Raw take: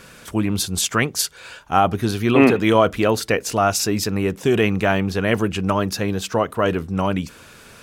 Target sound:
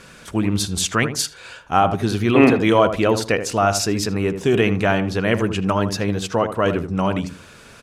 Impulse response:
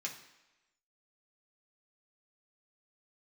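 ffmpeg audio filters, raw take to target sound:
-filter_complex "[0:a]lowpass=10000,asplit=2[link_01][link_02];[link_02]adelay=79,lowpass=frequency=1100:poles=1,volume=-8dB,asplit=2[link_03][link_04];[link_04]adelay=79,lowpass=frequency=1100:poles=1,volume=0.26,asplit=2[link_05][link_06];[link_06]adelay=79,lowpass=frequency=1100:poles=1,volume=0.26[link_07];[link_01][link_03][link_05][link_07]amix=inputs=4:normalize=0"

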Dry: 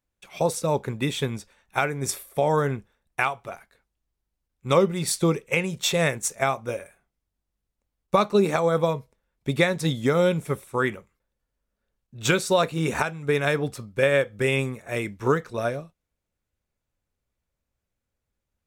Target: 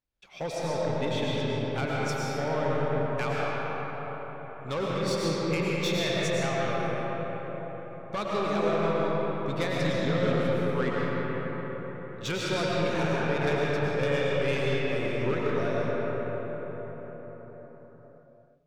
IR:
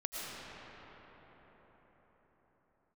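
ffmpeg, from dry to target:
-filter_complex "[0:a]highshelf=frequency=6900:width_type=q:width=1.5:gain=-11,asoftclip=type=tanh:threshold=-19.5dB[link_01];[1:a]atrim=start_sample=2205[link_02];[link_01][link_02]afir=irnorm=-1:irlink=0,volume=-4dB"

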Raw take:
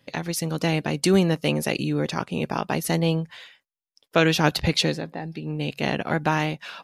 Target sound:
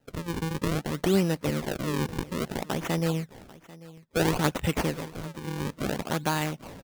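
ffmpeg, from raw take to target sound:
ffmpeg -i in.wav -af "bandreject=frequency=710:width=12,acrusher=samples=38:mix=1:aa=0.000001:lfo=1:lforange=60.8:lforate=0.59,aecho=1:1:792:0.1,volume=-4.5dB" out.wav

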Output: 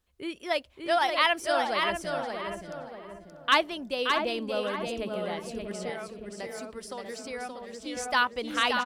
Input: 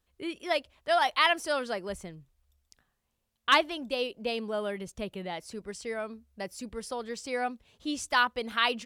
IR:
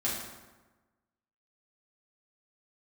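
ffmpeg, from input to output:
-filter_complex "[0:a]asplit=2[link_01][link_02];[link_02]adelay=640,lowpass=frequency=950:poles=1,volume=-5dB,asplit=2[link_03][link_04];[link_04]adelay=640,lowpass=frequency=950:poles=1,volume=0.36,asplit=2[link_05][link_06];[link_06]adelay=640,lowpass=frequency=950:poles=1,volume=0.36,asplit=2[link_07][link_08];[link_08]adelay=640,lowpass=frequency=950:poles=1,volume=0.36[link_09];[link_03][link_05][link_07][link_09]amix=inputs=4:normalize=0[link_10];[link_01][link_10]amix=inputs=2:normalize=0,asettb=1/sr,asplit=3[link_11][link_12][link_13];[link_11]atrim=end=5.894[link_14];[link_12]atrim=start=5.89:end=7.97,asetpts=PTS-STARTPTS,afade=type=in:duration=0.004:curve=qsin,afade=type=out:start_time=2.076:duration=0.004:curve=qsin,acrossover=split=240|1200[link_15][link_16][link_17];[link_15]acompressor=threshold=-53dB:ratio=4[link_18];[link_16]acompressor=threshold=-38dB:ratio=4[link_19];[link_17]acompressor=threshold=-41dB:ratio=4[link_20];[link_18][link_19][link_20]amix=inputs=3:normalize=0[link_21];[link_13]atrim=start=7.966[link_22];[link_14][link_21]acrossfade=duration=0.004:curve1=hsin:curve2=qsin[link_23];[link_23][link_22]acrossfade=duration=0.004:curve1=qsin:curve2=hsin,asplit=2[link_24][link_25];[link_25]aecho=0:1:575|1150|1725:0.562|0.0956|0.0163[link_26];[link_24][link_26]amix=inputs=2:normalize=0"

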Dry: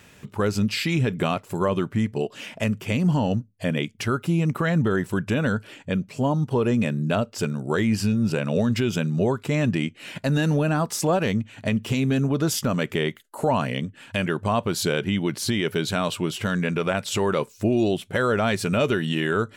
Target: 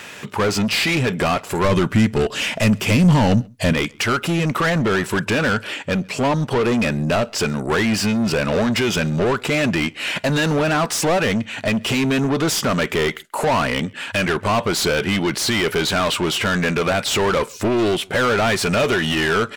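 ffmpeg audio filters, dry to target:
ffmpeg -i in.wav -filter_complex "[0:a]asplit=2[link_01][link_02];[link_02]highpass=frequency=720:poles=1,volume=24dB,asoftclip=type=tanh:threshold=-11.5dB[link_03];[link_01][link_03]amix=inputs=2:normalize=0,lowpass=frequency=5400:poles=1,volume=-6dB,asettb=1/sr,asplit=3[link_04][link_05][link_06];[link_04]atrim=end=1.644[link_07];[link_05]atrim=start=1.64:end=3.73,asetpts=PTS-STARTPTS,afade=type=in:duration=0.004:curve=qsin,afade=type=out:start_time=2.086:duration=0.004:curve=qsin,bass=frequency=250:gain=8,treble=frequency=4000:gain=4[link_08];[link_06]atrim=start=3.726[link_09];[link_07][link_08]acrossfade=duration=0.004:curve1=hsin:curve2=qsin[link_10];[link_10][link_09]acrossfade=duration=0.004:curve1=qsin:curve2=hsin,asplit=2[link_11][link_12];[link_12]adelay=134.1,volume=-28dB,highshelf=frequency=4000:gain=-3.02[link_13];[link_11][link_13]amix=inputs=2:normalize=0" out.wav

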